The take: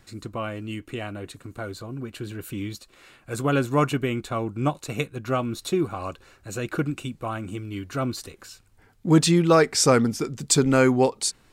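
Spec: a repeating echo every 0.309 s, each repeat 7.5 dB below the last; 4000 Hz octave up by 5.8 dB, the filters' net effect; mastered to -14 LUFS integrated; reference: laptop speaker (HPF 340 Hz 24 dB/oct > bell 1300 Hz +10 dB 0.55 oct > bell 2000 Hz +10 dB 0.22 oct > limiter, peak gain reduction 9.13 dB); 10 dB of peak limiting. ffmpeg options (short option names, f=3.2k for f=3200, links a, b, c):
-af "equalizer=f=4k:t=o:g=7,alimiter=limit=-13dB:level=0:latency=1,highpass=f=340:w=0.5412,highpass=f=340:w=1.3066,equalizer=f=1.3k:t=o:w=0.55:g=10,equalizer=f=2k:t=o:w=0.22:g=10,aecho=1:1:309|618|927|1236|1545:0.422|0.177|0.0744|0.0312|0.0131,volume=14dB,alimiter=limit=-1dB:level=0:latency=1"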